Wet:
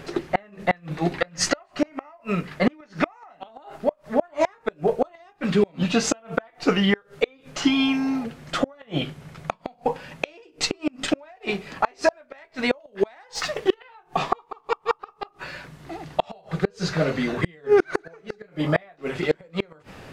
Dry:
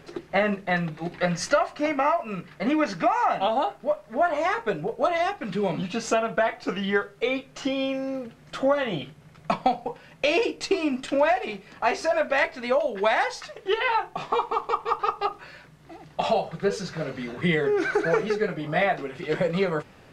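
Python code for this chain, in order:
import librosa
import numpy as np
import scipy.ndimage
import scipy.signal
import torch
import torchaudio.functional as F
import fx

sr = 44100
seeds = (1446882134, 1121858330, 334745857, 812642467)

y = fx.gate_flip(x, sr, shuts_db=-16.0, range_db=-34)
y = fx.spec_repair(y, sr, seeds[0], start_s=7.67, length_s=0.55, low_hz=380.0, high_hz=930.0, source='before')
y = fx.leveller(y, sr, passes=1, at=(13.35, 13.78))
y = F.gain(torch.from_numpy(y), 8.5).numpy()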